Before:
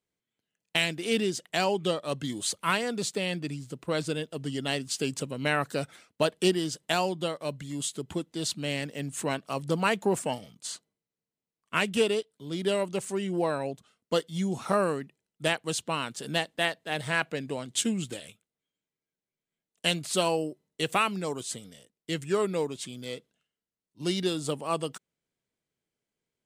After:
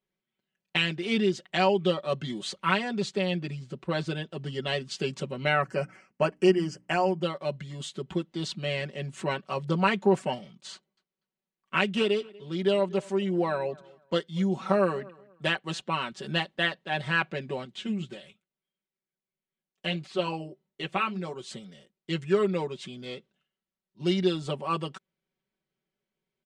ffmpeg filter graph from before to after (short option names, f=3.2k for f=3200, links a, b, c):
-filter_complex "[0:a]asettb=1/sr,asplit=3[a][b][c];[a]atrim=end=5.614[d];[b]atrim=start=5.61:end=7.23,asetpts=PTS-STARTPTS,afade=t=in:d=0.004:c=qsin,afade=t=out:st=1.616:d=0.004:c=qsin,asuperstop=centerf=3700:order=4:qfactor=1.9,bandreject=f=60:t=h:w=6,bandreject=f=120:t=h:w=6,bandreject=f=180:t=h:w=6,bandreject=f=240:t=h:w=6,bandreject=f=300:t=h:w=6[e];[c]atrim=start=7.226[f];[d][e]acrossfade=d=0.004:c1=hsin:c2=qsin[g];[g][f]acrossfade=d=0.004:c1=qsin:c2=hsin,asettb=1/sr,asplit=3[h][i][j];[h]atrim=end=10.734[k];[i]atrim=start=10.73:end=16.12,asetpts=PTS-STARTPTS,afade=t=in:d=0.004:c=qsin,afade=t=out:st=5.386:d=0.004:c=qsin,equalizer=f=66:w=1.3:g=-14,asplit=2[l][m];[m]adelay=241,lowpass=f=3.1k:p=1,volume=-23dB,asplit=2[n][o];[o]adelay=241,lowpass=f=3.1k:p=1,volume=0.25[p];[l][n][p]amix=inputs=3:normalize=0,atrim=end_sample=237699[q];[j]atrim=start=16.116[r];[k][q]acrossfade=d=0.004:c1=hsin:c2=qsin[s];[s][r]acrossfade=d=0.004:c1=qsin:c2=hsin,asettb=1/sr,asplit=3[t][u][v];[t]atrim=end=17.654[w];[u]atrim=start=17.65:end=21.43,asetpts=PTS-STARTPTS,afade=t=in:d=0.004:c=qsin,afade=t=out:st=3.776:d=0.004:c=qsin,flanger=delay=2.2:depth=6.3:regen=-60:speed=1.6:shape=triangular,acrossover=split=4000[x][y];[y]acompressor=threshold=-44dB:ratio=4:attack=1:release=60[z];[x][z]amix=inputs=2:normalize=0[aa];[v]atrim=start=21.426[ab];[w][aa]acrossfade=d=0.004:c1=hsin:c2=qsin[ac];[ac][ab]acrossfade=d=0.004:c1=qsin:c2=hsin,lowpass=3.9k,aecho=1:1:5.3:0.88,volume=-1dB"